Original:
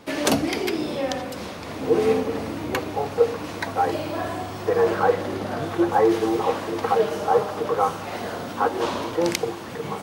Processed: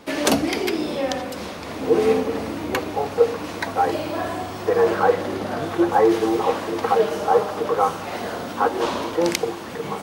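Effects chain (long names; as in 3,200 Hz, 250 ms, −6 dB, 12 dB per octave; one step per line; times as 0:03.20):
parametric band 120 Hz −9 dB 0.4 octaves
level +2 dB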